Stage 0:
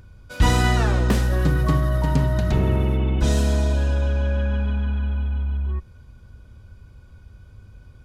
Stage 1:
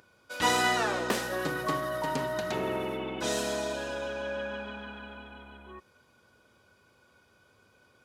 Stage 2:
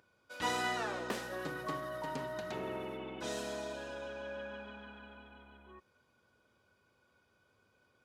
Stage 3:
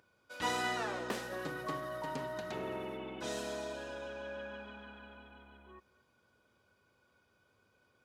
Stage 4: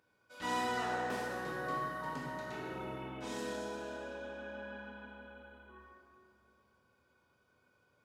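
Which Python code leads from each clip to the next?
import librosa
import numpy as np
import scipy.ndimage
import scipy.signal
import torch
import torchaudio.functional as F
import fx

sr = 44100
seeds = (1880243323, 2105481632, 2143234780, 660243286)

y1 = scipy.signal.sosfilt(scipy.signal.butter(2, 410.0, 'highpass', fs=sr, output='sos'), x)
y1 = F.gain(torch.from_numpy(y1), -1.5).numpy()
y2 = fx.high_shelf(y1, sr, hz=5500.0, db=-4.5)
y2 = F.gain(torch.from_numpy(y2), -8.5).numpy()
y3 = y2 + 10.0 ** (-20.5 / 20.0) * np.pad(y2, (int(219 * sr / 1000.0), 0))[:len(y2)]
y4 = fx.comb_fb(y3, sr, f0_hz=370.0, decay_s=0.81, harmonics='all', damping=0.0, mix_pct=60)
y4 = fx.rev_plate(y4, sr, seeds[0], rt60_s=2.3, hf_ratio=0.5, predelay_ms=0, drr_db=-5.5)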